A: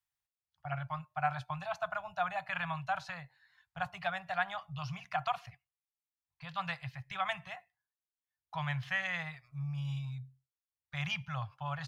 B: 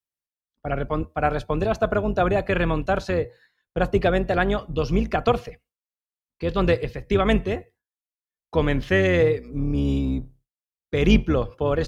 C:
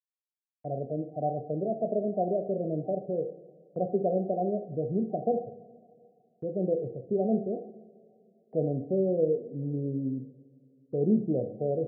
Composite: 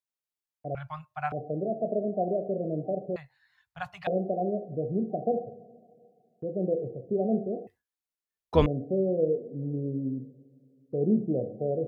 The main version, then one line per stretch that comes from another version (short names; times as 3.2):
C
0.75–1.32 from A
3.16–4.07 from A
7.67–8.66 from B